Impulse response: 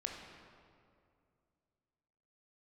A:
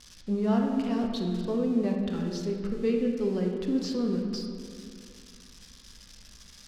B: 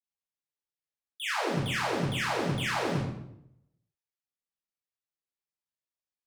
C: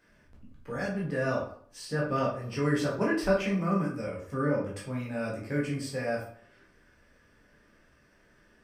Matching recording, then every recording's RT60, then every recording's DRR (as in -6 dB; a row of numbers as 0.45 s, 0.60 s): A; 2.4 s, 0.75 s, 0.55 s; 1.0 dB, -9.0 dB, -4.5 dB